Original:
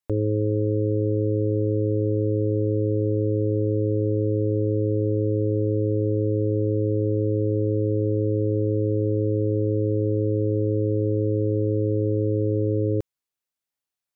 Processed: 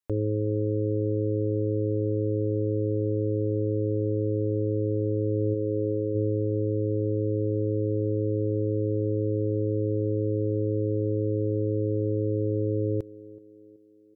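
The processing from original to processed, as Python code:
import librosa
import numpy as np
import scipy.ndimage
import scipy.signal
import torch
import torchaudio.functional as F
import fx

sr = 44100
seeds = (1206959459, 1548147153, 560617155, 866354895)

y = fx.low_shelf(x, sr, hz=330.0, db=-8.0, at=(5.53, 6.14), fade=0.02)
y = fx.rider(y, sr, range_db=10, speed_s=0.5)
y = fx.echo_banded(y, sr, ms=377, feedback_pct=53, hz=300.0, wet_db=-19)
y = y * 10.0 ** (-4.0 / 20.0)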